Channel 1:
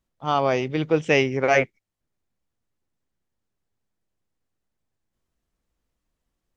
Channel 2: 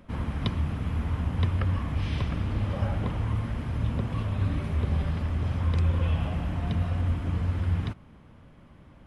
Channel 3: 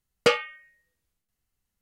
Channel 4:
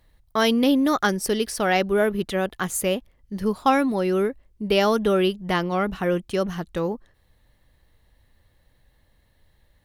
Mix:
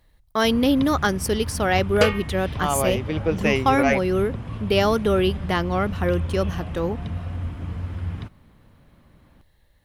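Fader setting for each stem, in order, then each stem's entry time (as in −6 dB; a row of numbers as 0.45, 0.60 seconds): −2.5, −2.5, 0.0, 0.0 decibels; 2.35, 0.35, 1.75, 0.00 seconds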